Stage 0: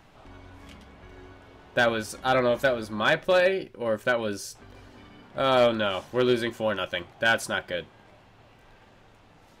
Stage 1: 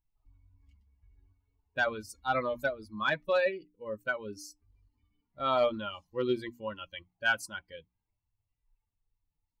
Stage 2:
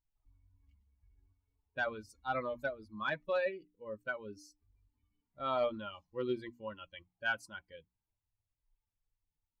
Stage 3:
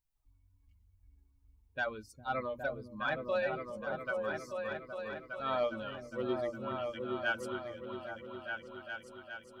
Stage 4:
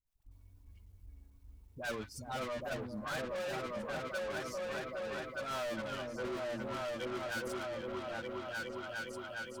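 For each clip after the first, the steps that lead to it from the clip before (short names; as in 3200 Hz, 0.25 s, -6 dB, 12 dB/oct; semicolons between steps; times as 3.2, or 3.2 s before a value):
per-bin expansion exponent 2; notches 60/120/180/240/300 Hz; dynamic EQ 1200 Hz, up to +5 dB, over -40 dBFS, Q 1.6; gain -5 dB
LPF 3400 Hz 6 dB/oct; gain -5.5 dB
high shelf 8300 Hz +5 dB; on a send: repeats that get brighter 0.409 s, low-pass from 200 Hz, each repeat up 2 oct, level 0 dB
soft clip -38 dBFS, distortion -7 dB; sample leveller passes 2; dispersion highs, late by 66 ms, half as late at 670 Hz; gain +1.5 dB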